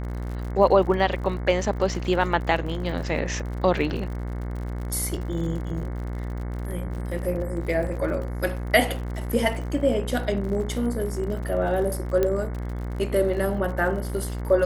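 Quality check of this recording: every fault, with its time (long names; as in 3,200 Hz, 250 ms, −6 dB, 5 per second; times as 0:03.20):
mains buzz 60 Hz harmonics 37 −30 dBFS
surface crackle 64 per second −34 dBFS
0:12.23: click −11 dBFS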